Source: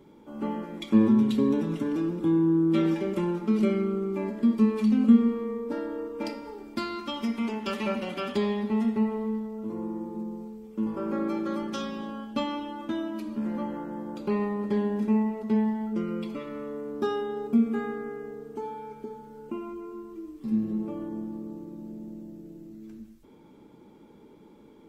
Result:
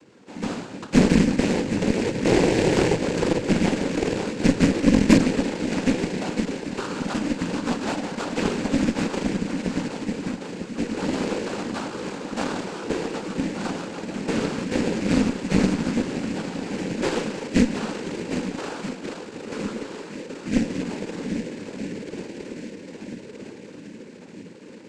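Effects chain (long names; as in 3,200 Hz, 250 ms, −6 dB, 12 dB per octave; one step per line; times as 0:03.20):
feedback echo with a long and a short gap by turns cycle 1,277 ms, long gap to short 1.5 to 1, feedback 56%, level −8.5 dB
decimation without filtering 19×
cochlear-implant simulation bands 8
harmonic generator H 6 −17 dB, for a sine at −4.5 dBFS
level +2.5 dB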